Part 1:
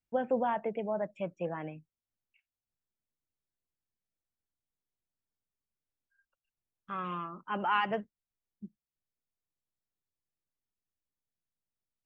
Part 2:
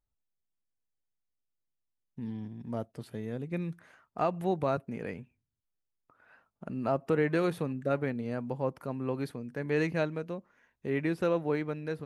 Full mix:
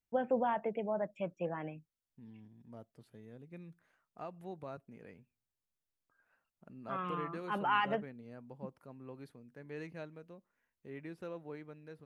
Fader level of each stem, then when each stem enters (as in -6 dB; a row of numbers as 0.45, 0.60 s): -2.0, -16.0 dB; 0.00, 0.00 s